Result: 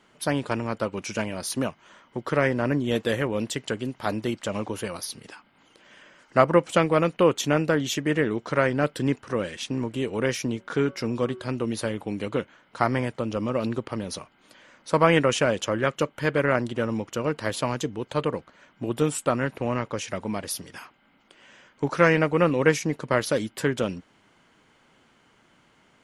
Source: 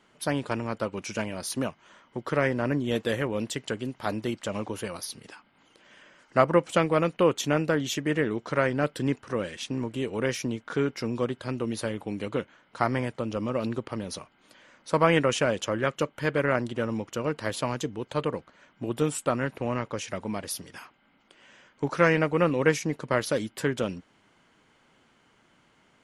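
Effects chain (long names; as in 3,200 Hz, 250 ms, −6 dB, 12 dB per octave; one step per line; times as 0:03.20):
0:10.40–0:11.55: hum removal 187.5 Hz, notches 8
level +2.5 dB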